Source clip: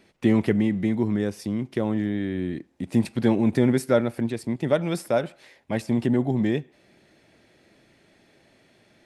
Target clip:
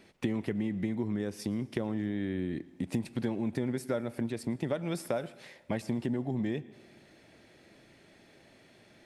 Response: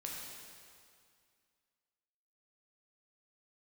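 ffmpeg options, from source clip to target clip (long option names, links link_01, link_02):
-filter_complex "[0:a]acompressor=threshold=-29dB:ratio=6,asplit=2[link_01][link_02];[1:a]atrim=start_sample=2205,asetrate=61740,aresample=44100,adelay=113[link_03];[link_02][link_03]afir=irnorm=-1:irlink=0,volume=-17dB[link_04];[link_01][link_04]amix=inputs=2:normalize=0"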